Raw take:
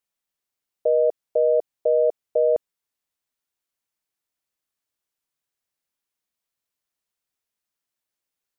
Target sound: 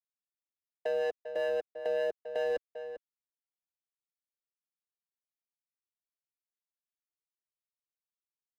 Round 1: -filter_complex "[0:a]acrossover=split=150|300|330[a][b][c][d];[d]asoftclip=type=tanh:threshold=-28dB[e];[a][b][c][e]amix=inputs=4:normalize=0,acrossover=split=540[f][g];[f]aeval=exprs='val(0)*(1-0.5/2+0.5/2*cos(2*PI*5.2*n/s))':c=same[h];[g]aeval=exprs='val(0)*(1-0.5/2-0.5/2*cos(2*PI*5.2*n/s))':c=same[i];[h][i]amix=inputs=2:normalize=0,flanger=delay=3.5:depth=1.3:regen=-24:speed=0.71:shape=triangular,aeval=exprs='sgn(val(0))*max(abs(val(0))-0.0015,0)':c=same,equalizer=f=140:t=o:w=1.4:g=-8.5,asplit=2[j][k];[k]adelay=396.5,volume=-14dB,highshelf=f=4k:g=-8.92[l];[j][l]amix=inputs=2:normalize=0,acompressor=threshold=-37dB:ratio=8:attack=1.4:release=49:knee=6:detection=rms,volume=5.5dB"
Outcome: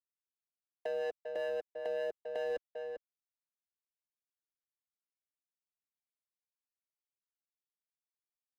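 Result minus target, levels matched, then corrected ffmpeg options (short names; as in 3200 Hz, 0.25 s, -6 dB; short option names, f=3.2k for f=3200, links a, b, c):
compressor: peak gain reduction +5 dB
-filter_complex "[0:a]acrossover=split=150|300|330[a][b][c][d];[d]asoftclip=type=tanh:threshold=-28dB[e];[a][b][c][e]amix=inputs=4:normalize=0,acrossover=split=540[f][g];[f]aeval=exprs='val(0)*(1-0.5/2+0.5/2*cos(2*PI*5.2*n/s))':c=same[h];[g]aeval=exprs='val(0)*(1-0.5/2-0.5/2*cos(2*PI*5.2*n/s))':c=same[i];[h][i]amix=inputs=2:normalize=0,flanger=delay=3.5:depth=1.3:regen=-24:speed=0.71:shape=triangular,aeval=exprs='sgn(val(0))*max(abs(val(0))-0.0015,0)':c=same,equalizer=f=140:t=o:w=1.4:g=-8.5,asplit=2[j][k];[k]adelay=396.5,volume=-14dB,highshelf=f=4k:g=-8.92[l];[j][l]amix=inputs=2:normalize=0,acompressor=threshold=-31dB:ratio=8:attack=1.4:release=49:knee=6:detection=rms,volume=5.5dB"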